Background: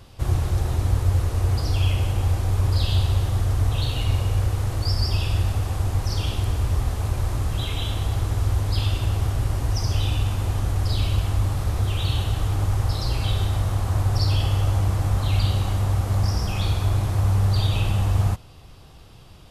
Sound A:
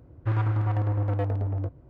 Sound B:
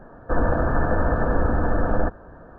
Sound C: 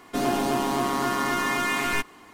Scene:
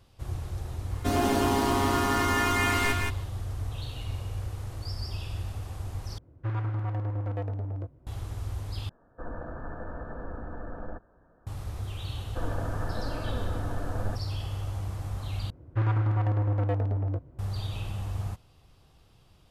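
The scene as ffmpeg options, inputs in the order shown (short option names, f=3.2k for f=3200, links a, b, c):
-filter_complex "[1:a]asplit=2[a][b];[2:a]asplit=2[c][d];[0:a]volume=-12.5dB[e];[3:a]aecho=1:1:172:0.631[f];[d]flanger=delay=3.2:depth=4.1:regen=61:speed=0.88:shape=sinusoidal[g];[e]asplit=4[h][i][j][k];[h]atrim=end=6.184[l];[a]atrim=end=1.89,asetpts=PTS-STARTPTS,volume=-5.5dB[m];[i]atrim=start=8.066:end=8.894[n];[c]atrim=end=2.58,asetpts=PTS-STARTPTS,volume=-17.5dB[o];[j]atrim=start=11.466:end=15.504[p];[b]atrim=end=1.89,asetpts=PTS-STARTPTS,volume=-0.5dB[q];[k]atrim=start=17.386[r];[f]atrim=end=2.33,asetpts=PTS-STARTPTS,volume=-2dB,afade=t=in:d=0.004:c=hsin,afade=t=out:st=2.326:d=0.004:c=hsin,adelay=910[s];[g]atrim=end=2.58,asetpts=PTS-STARTPTS,volume=-9dB,afade=t=in:d=0.004:c=hsin,afade=t=out:st=2.576:d=0.004:c=hsin,adelay=12060[t];[l][m]acrossfade=d=0.004:c1=hsin:c2=hsin[u];[u][n]acrossfade=d=0.004:c1=hsin:c2=hsin[v];[v][o]acrossfade=d=0.004:c1=hsin:c2=hsin[w];[w][p]acrossfade=d=0.004:c1=hsin:c2=hsin[x];[x][q]acrossfade=d=0.004:c1=hsin:c2=hsin[y];[y][r]acrossfade=d=0.004:c1=hsin:c2=hsin[z];[z][s][t]amix=inputs=3:normalize=0"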